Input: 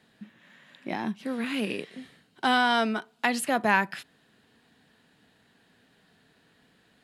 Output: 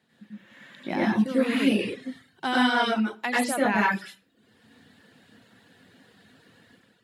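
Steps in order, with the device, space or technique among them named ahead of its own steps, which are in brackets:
far laptop microphone (convolution reverb RT60 0.45 s, pre-delay 86 ms, DRR −5.5 dB; high-pass filter 110 Hz; automatic gain control gain up to 8.5 dB)
reverb reduction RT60 0.58 s
low-shelf EQ 82 Hz +11.5 dB
level −7.5 dB

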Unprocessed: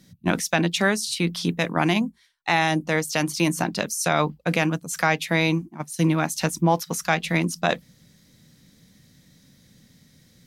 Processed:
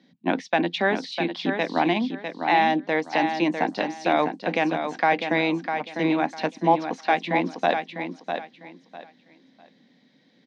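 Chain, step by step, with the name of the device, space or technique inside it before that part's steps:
high-pass filter 260 Hz 12 dB per octave
kitchen radio (loudspeaker in its box 180–3,700 Hz, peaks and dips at 260 Hz +7 dB, 790 Hz +5 dB, 1,300 Hz −8 dB)
parametric band 2,700 Hz −3.5 dB 0.5 octaves
repeating echo 651 ms, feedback 24%, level −7 dB

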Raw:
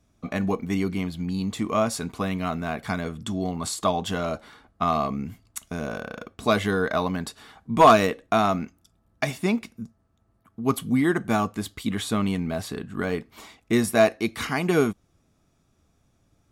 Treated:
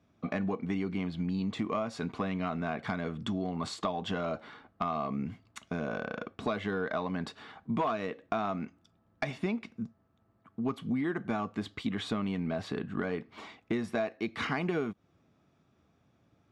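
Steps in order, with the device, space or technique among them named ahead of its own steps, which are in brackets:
AM radio (band-pass filter 110–3,400 Hz; downward compressor 8 to 1, threshold −28 dBFS, peak gain reduction 17.5 dB; soft clipping −17.5 dBFS, distortion −26 dB)

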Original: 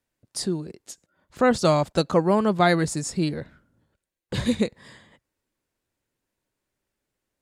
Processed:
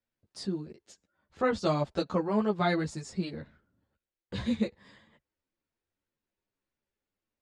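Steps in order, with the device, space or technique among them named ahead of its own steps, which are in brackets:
string-machine ensemble chorus (string-ensemble chorus; low-pass filter 5,200 Hz 12 dB per octave)
level −5 dB

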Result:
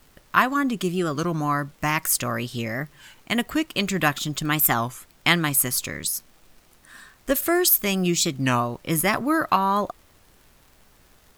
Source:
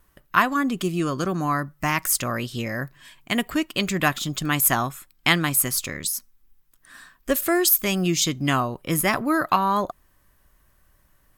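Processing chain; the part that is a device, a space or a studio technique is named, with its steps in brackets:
warped LP (wow of a warped record 33 1/3 rpm, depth 160 cents; surface crackle; pink noise bed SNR 33 dB)

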